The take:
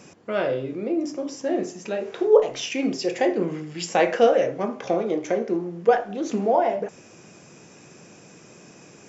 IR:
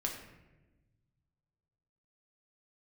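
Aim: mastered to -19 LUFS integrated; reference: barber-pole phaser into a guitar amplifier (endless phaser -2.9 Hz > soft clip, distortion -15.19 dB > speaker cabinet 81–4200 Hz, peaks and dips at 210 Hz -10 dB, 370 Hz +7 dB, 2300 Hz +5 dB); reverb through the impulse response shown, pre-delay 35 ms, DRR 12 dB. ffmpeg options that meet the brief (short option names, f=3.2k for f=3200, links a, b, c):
-filter_complex "[0:a]asplit=2[a][b];[1:a]atrim=start_sample=2205,adelay=35[c];[b][c]afir=irnorm=-1:irlink=0,volume=-14dB[d];[a][d]amix=inputs=2:normalize=0,asplit=2[e][f];[f]afreqshift=-2.9[g];[e][g]amix=inputs=2:normalize=1,asoftclip=threshold=-11.5dB,highpass=81,equalizer=f=210:t=q:w=4:g=-10,equalizer=f=370:t=q:w=4:g=7,equalizer=f=2.3k:t=q:w=4:g=5,lowpass=f=4.2k:w=0.5412,lowpass=f=4.2k:w=1.3066,volume=6.5dB"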